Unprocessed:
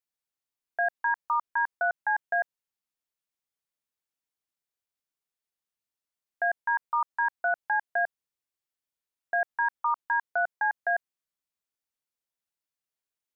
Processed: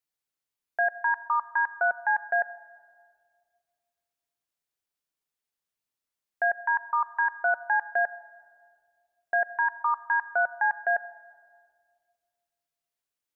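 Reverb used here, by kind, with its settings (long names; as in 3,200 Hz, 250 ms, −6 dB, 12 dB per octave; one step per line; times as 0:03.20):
rectangular room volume 3,300 cubic metres, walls mixed, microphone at 0.38 metres
level +1.5 dB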